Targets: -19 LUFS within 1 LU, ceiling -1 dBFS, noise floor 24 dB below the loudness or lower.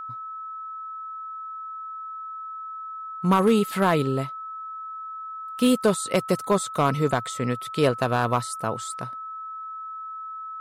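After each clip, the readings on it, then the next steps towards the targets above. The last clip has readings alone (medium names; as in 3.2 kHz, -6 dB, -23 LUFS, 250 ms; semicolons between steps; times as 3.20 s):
clipped samples 0.3%; clipping level -12.0 dBFS; steady tone 1.3 kHz; tone level -33 dBFS; loudness -26.5 LUFS; peak level -12.0 dBFS; loudness target -19.0 LUFS
-> clip repair -12 dBFS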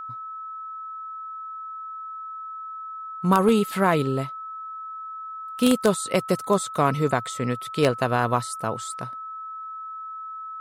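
clipped samples 0.0%; steady tone 1.3 kHz; tone level -33 dBFS
-> band-stop 1.3 kHz, Q 30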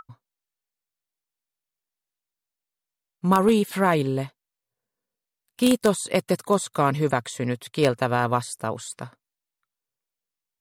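steady tone not found; loudness -23.5 LUFS; peak level -3.0 dBFS; loudness target -19.0 LUFS
-> trim +4.5 dB; peak limiter -1 dBFS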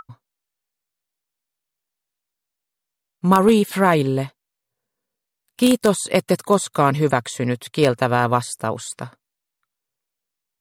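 loudness -19.0 LUFS; peak level -1.0 dBFS; noise floor -83 dBFS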